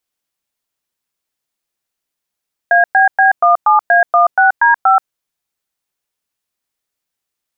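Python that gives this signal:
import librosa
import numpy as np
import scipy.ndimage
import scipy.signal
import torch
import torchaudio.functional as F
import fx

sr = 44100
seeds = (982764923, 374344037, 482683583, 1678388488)

y = fx.dtmf(sr, digits='ABB17A16D5', tone_ms=130, gap_ms=108, level_db=-9.0)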